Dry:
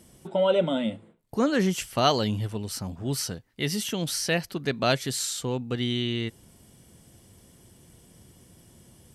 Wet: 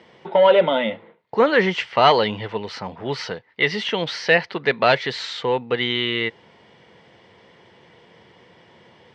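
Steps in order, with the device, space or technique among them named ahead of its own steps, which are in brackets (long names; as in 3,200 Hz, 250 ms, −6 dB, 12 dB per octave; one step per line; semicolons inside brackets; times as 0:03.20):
overdrive pedal into a guitar cabinet (mid-hump overdrive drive 14 dB, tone 4,000 Hz, clips at −6.5 dBFS; loudspeaker in its box 110–4,100 Hz, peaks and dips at 270 Hz −5 dB, 470 Hz +7 dB, 920 Hz +7 dB, 2,000 Hz +8 dB)
level +1.5 dB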